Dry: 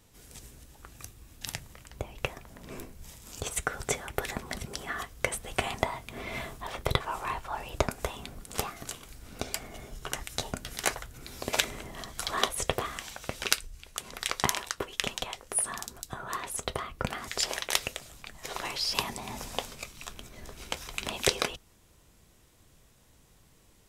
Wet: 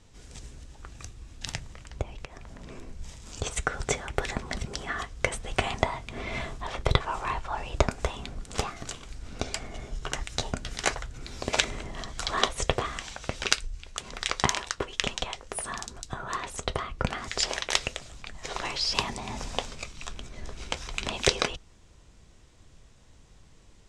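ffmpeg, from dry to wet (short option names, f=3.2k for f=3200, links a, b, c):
-filter_complex "[0:a]asettb=1/sr,asplit=3[a][b][c];[a]atrim=end=2.024[d];[b]atrim=start=2.02:end=2.88,asetpts=PTS-STARTPTS,afade=t=in:d=0.004:c=qsin,afade=t=out:st=0.856:d=0.004:c=qsin,acompressor=threshold=-43dB:ratio=5:attack=3.2:release=140:knee=1:detection=peak[e];[c]atrim=start=2.876[f];[d][e]acrossfade=d=0.004:c1=hsin:c2=qsin[g];[g][f]acrossfade=d=0.004:c1=qsin:c2=hsin,lowpass=f=7.8k:w=0.5412,lowpass=f=7.8k:w=1.3066,lowshelf=f=67:g=8.5,volume=2.5dB"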